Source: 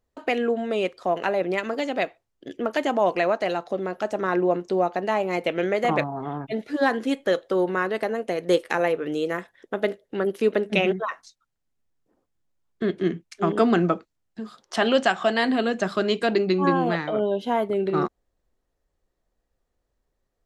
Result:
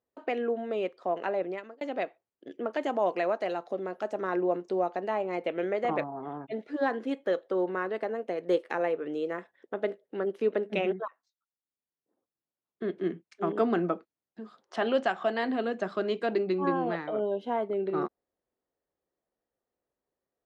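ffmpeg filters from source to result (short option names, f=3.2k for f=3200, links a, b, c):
-filter_complex "[0:a]asettb=1/sr,asplit=3[a][b][c];[a]atrim=end=2.814[d];[b]atrim=start=2.81:end=5.08,asetpts=PTS-STARTPTS,afade=t=in:d=0.004:c=qsin,afade=t=out:st=2.266:d=0.004:c=qsin,highshelf=f=6.3k:g=11[e];[c]atrim=start=5.076[f];[d][e]acrossfade=d=0.004:c1=hsin:c2=qsin[g];[g][f]acrossfade=d=0.004:c1=qsin:c2=hsin,asplit=3[h][i][j];[h]atrim=end=1.81,asetpts=PTS-STARTPTS,afade=t=out:st=1.39:d=0.42[k];[i]atrim=start=1.81:end=11.08,asetpts=PTS-STARTPTS,afade=t=in:d=0.004:c=hsin,afade=t=out:st=9.266:d=0.004:c=hsin:silence=0.0891251[l];[j]atrim=start=11.08,asetpts=PTS-STARTPTS,afade=t=in:d=2:silence=0.0891251[m];[k][l][m]concat=n=3:v=0:a=1,highpass=370,aemphasis=mode=reproduction:type=riaa,volume=-7dB"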